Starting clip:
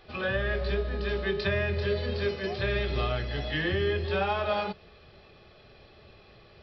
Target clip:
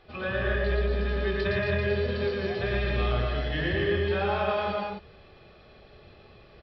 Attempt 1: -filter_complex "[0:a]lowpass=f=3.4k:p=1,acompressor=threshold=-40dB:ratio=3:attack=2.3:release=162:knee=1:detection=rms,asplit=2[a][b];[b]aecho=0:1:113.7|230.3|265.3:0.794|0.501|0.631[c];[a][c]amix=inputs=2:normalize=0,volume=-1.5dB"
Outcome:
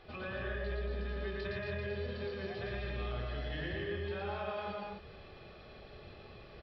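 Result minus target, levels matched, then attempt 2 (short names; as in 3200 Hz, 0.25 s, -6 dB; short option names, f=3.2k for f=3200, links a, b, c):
compressor: peak gain reduction +14 dB
-filter_complex "[0:a]lowpass=f=3.4k:p=1,asplit=2[a][b];[b]aecho=0:1:113.7|230.3|265.3:0.794|0.501|0.631[c];[a][c]amix=inputs=2:normalize=0,volume=-1.5dB"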